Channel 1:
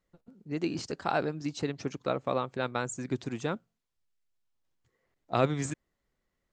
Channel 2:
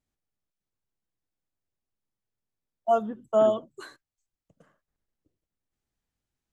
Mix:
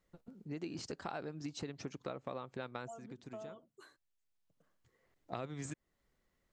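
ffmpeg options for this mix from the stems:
-filter_complex "[0:a]acompressor=threshold=-35dB:ratio=3,volume=1.5dB[a];[1:a]acompressor=threshold=-26dB:ratio=6,volume=-15.5dB,asplit=2[b][c];[c]apad=whole_len=287817[d];[a][d]sidechaincompress=threshold=-54dB:ratio=5:attack=16:release=1450[e];[e][b]amix=inputs=2:normalize=0,acompressor=threshold=-50dB:ratio=1.5"

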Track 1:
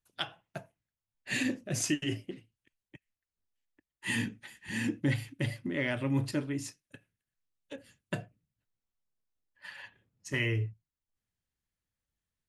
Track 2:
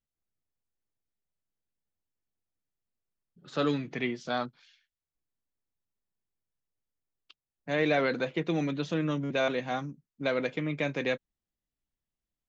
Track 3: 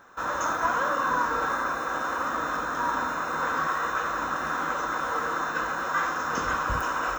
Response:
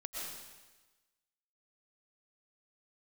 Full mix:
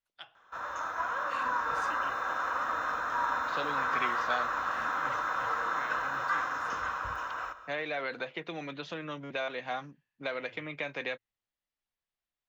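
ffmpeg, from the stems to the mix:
-filter_complex "[0:a]volume=-12dB,asplit=2[a][b];[b]volume=-23dB[c];[1:a]acompressor=threshold=-30dB:ratio=6,volume=2.5dB,asplit=2[d][e];[2:a]equalizer=f=81:t=o:w=1.5:g=9,dynaudnorm=f=260:g=9:m=5.5dB,adelay=350,volume=-9.5dB,asplit=2[f][g];[g]volume=-11.5dB[h];[e]apad=whole_len=550661[i];[a][i]sidechaincompress=threshold=-40dB:ratio=8:attack=16:release=269[j];[3:a]atrim=start_sample=2205[k];[c][h]amix=inputs=2:normalize=0[l];[l][k]afir=irnorm=-1:irlink=0[m];[j][d][f][m]amix=inputs=4:normalize=0,acrossover=split=560 5000:gain=0.224 1 0.2[n][o][p];[n][o][p]amix=inputs=3:normalize=0"

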